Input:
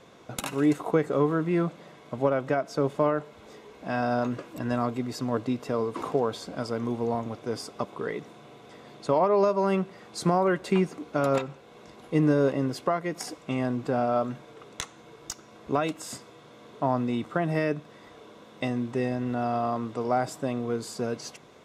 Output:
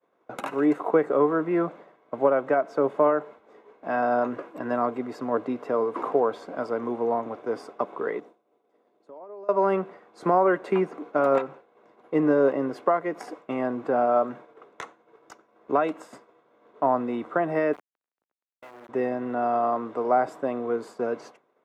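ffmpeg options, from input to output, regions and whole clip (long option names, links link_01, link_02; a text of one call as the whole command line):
ffmpeg -i in.wav -filter_complex "[0:a]asettb=1/sr,asplit=3[link_01][link_02][link_03];[link_01]atrim=end=8.204[link_04];[link_02]atrim=start=8.2:end=9.49,asetpts=PTS-STARTPTS,afade=type=in:duration=0.004:curve=qsin,afade=type=out:start_time=1.286:duration=0.004:curve=qsin,acompressor=threshold=-39dB:ratio=5:attack=3.2:release=140:knee=1:detection=peak,highpass=240,equalizer=frequency=1600:width=0.5:gain=-9.5[link_05];[link_03]atrim=start=9.486[link_06];[link_04][link_05]acrossfade=duration=0.004:curve1=hsin:curve2=qsin[link_07];[link_07][link_06]acrossfade=duration=0.004:curve1=qsin:curve2=hsin,asettb=1/sr,asplit=3[link_08][link_09][link_10];[link_08]atrim=end=17.734[link_11];[link_09]atrim=start=17.73:end=18.89,asetpts=PTS-STARTPTS,afade=type=in:duration=0.004:curve=qsin,afade=type=out:start_time=1.156:duration=0.004:curve=qsin,highpass=frequency=320:width=0.5412,highpass=frequency=320:width=1.3066,acompressor=threshold=-42dB:ratio=2:attack=3.2:release=140:knee=1:detection=peak,acrusher=bits=4:dc=4:mix=0:aa=0.000001[link_12];[link_10]atrim=start=18.886[link_13];[link_11][link_12]acrossfade=duration=0.004:curve1=hsin:curve2=qsin[link_14];[link_14][link_13]acrossfade=duration=0.004:curve1=qsin:curve2=hsin,highpass=frequency=170:poles=1,acrossover=split=260 2000:gain=0.2 1 0.112[link_15][link_16][link_17];[link_15][link_16][link_17]amix=inputs=3:normalize=0,agate=range=-33dB:threshold=-43dB:ratio=3:detection=peak,volume=5dB" out.wav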